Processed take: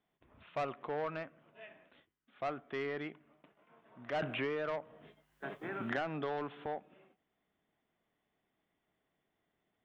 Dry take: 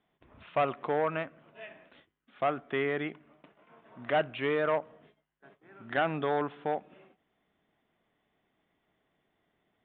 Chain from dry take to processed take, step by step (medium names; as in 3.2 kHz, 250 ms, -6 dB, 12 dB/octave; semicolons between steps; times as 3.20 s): saturation -22.5 dBFS, distortion -17 dB; 4.22–6.66 s: three bands compressed up and down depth 100%; trim -6.5 dB